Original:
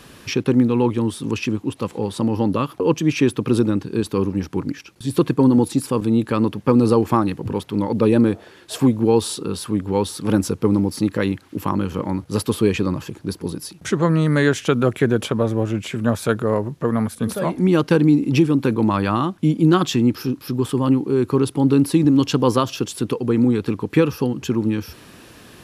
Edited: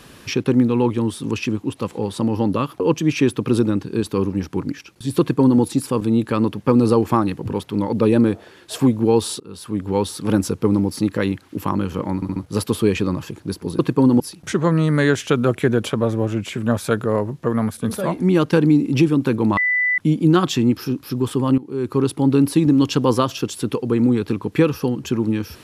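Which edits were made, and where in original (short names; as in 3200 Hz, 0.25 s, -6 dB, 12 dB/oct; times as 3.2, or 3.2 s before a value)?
5.2–5.61 copy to 13.58
9.4–9.88 fade in, from -24 dB
12.15 stutter 0.07 s, 4 plays
18.95–19.36 bleep 1990 Hz -15.5 dBFS
20.96–21.42 fade in, from -17.5 dB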